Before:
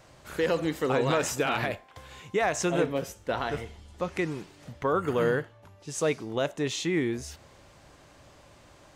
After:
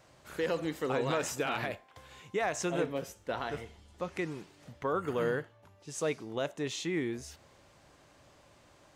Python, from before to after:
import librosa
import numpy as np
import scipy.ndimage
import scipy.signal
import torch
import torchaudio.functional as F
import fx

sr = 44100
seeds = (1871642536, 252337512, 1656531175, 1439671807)

y = fx.low_shelf(x, sr, hz=67.0, db=-7.0)
y = F.gain(torch.from_numpy(y), -5.5).numpy()